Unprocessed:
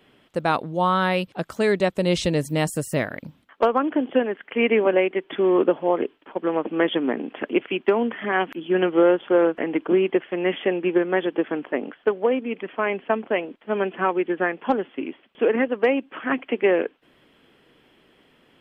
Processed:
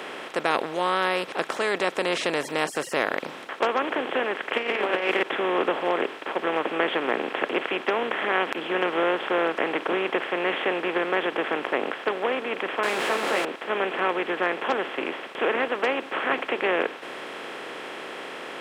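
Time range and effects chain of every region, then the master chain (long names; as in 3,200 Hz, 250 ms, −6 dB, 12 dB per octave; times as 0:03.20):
0:04.53–0:05.23: high-shelf EQ 2,500 Hz +12 dB + double-tracking delay 34 ms −2 dB + compressor whose output falls as the input rises −21 dBFS, ratio −0.5
0:12.83–0:13.45: converter with a step at zero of −22.5 dBFS + parametric band 5,800 Hz −9 dB 0.29 octaves + string-ensemble chorus
whole clip: compressor on every frequency bin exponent 0.4; meter weighting curve A; level −7 dB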